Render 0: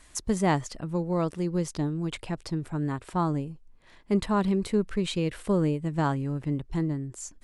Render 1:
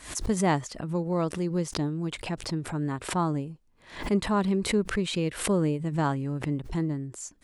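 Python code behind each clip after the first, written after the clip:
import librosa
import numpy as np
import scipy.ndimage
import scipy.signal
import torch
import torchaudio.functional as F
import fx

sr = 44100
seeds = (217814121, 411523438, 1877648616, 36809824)

y = fx.highpass(x, sr, hz=76.0, slope=6)
y = fx.pre_swell(y, sr, db_per_s=120.0)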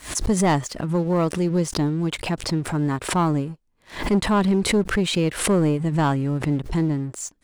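y = fx.leveller(x, sr, passes=2)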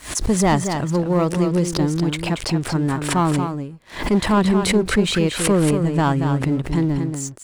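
y = x + 10.0 ** (-7.0 / 20.0) * np.pad(x, (int(231 * sr / 1000.0), 0))[:len(x)]
y = y * 10.0 ** (2.0 / 20.0)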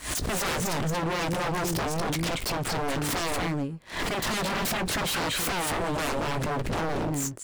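y = 10.0 ** (-23.5 / 20.0) * (np.abs((x / 10.0 ** (-23.5 / 20.0) + 3.0) % 4.0 - 2.0) - 1.0)
y = fx.doubler(y, sr, ms=18.0, db=-13.5)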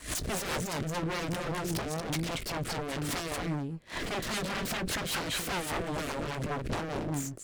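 y = fx.diode_clip(x, sr, knee_db=-32.5)
y = fx.rotary(y, sr, hz=5.0)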